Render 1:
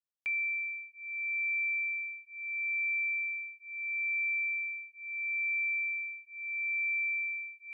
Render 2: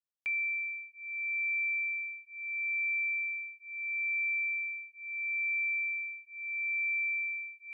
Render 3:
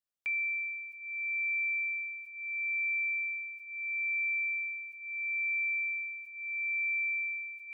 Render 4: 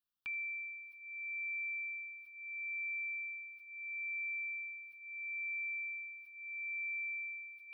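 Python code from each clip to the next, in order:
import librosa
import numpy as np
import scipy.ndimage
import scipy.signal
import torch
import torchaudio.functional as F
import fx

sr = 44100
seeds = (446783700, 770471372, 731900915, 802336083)

y1 = x
y2 = fx.sustainer(y1, sr, db_per_s=35.0)
y3 = fx.fixed_phaser(y2, sr, hz=2100.0, stages=6)
y3 = fx.echo_feedback(y3, sr, ms=80, feedback_pct=35, wet_db=-22.0)
y3 = y3 * 10.0 ** (2.0 / 20.0)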